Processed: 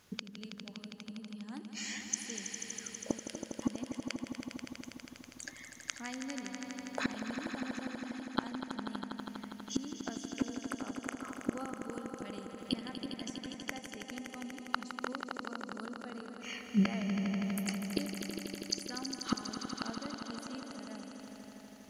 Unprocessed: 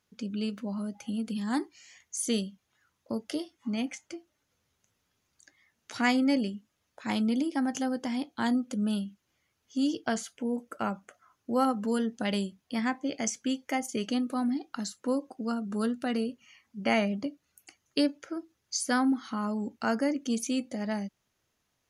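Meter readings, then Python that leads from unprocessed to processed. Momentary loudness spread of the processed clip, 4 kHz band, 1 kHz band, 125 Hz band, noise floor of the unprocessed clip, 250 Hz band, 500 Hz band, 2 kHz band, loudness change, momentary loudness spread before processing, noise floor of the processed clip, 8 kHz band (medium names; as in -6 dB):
11 LU, -3.5 dB, -9.0 dB, no reading, -78 dBFS, -8.5 dB, -10.5 dB, -6.0 dB, -8.5 dB, 10 LU, -53 dBFS, -3.5 dB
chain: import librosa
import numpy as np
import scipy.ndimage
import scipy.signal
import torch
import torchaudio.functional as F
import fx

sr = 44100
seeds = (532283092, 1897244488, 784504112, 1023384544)

y = fx.gate_flip(x, sr, shuts_db=-31.0, range_db=-31)
y = fx.echo_swell(y, sr, ms=81, loudest=5, wet_db=-9.5)
y = y * 10.0 ** (13.0 / 20.0)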